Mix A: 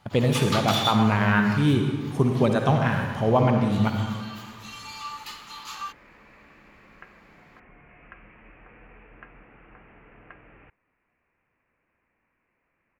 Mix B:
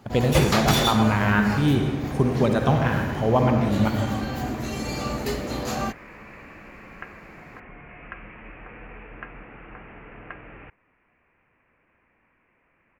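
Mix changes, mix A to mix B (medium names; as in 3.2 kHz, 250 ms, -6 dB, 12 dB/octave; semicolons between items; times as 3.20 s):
first sound: remove rippled Chebyshev high-pass 840 Hz, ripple 9 dB; second sound +8.5 dB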